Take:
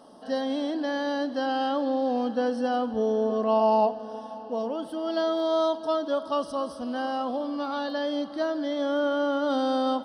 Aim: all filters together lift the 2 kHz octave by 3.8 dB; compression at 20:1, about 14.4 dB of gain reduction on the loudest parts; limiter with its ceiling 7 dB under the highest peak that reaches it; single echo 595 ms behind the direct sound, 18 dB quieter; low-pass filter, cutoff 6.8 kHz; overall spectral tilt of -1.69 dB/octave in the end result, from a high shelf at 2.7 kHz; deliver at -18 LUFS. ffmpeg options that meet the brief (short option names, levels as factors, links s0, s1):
-af "lowpass=6800,equalizer=f=2000:t=o:g=3,highshelf=f=2700:g=6.5,acompressor=threshold=0.0282:ratio=20,alimiter=level_in=1.88:limit=0.0631:level=0:latency=1,volume=0.531,aecho=1:1:595:0.126,volume=8.91"